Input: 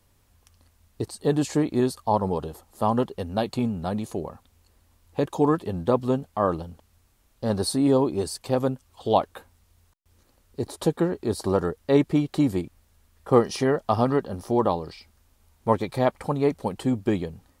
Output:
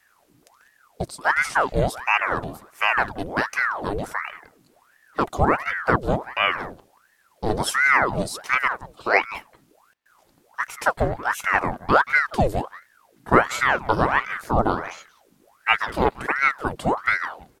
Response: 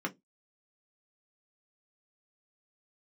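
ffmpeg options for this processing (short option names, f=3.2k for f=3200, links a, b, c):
-filter_complex "[0:a]asplit=2[a][b];[b]adelay=180,highpass=300,lowpass=3.4k,asoftclip=type=hard:threshold=-14dB,volume=-14dB[c];[a][c]amix=inputs=2:normalize=0,aeval=exprs='val(0)*sin(2*PI*1000*n/s+1000*0.8/1.4*sin(2*PI*1.4*n/s))':c=same,volume=4.5dB"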